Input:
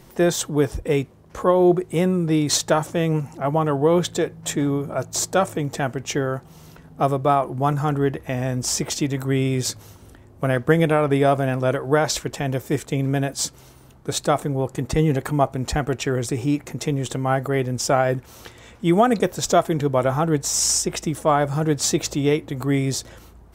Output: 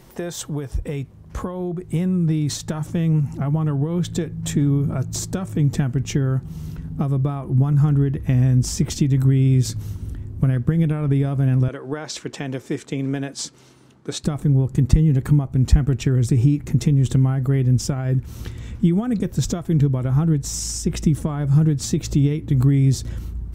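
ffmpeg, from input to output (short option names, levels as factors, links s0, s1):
-filter_complex "[0:a]asettb=1/sr,asplit=3[s0][s1][s2];[s0]atrim=end=11.684[s3];[s1]atrim=start=11.68:end=14.24,asetpts=PTS-STARTPTS,afade=t=in:d=0.004:c=qsin,afade=t=out:st=2.556:d=0.004:c=qsin,highpass=400,lowpass=7300[s4];[s2]atrim=start=14.236[s5];[s3][s4]acrossfade=d=0.004:c1=hsin:c2=qsin[s6];[s6][s5]acrossfade=d=0.004:c1=qsin:c2=hsin,alimiter=limit=0.224:level=0:latency=1:release=401,acompressor=threshold=0.0562:ratio=6,asubboost=boost=9.5:cutoff=200"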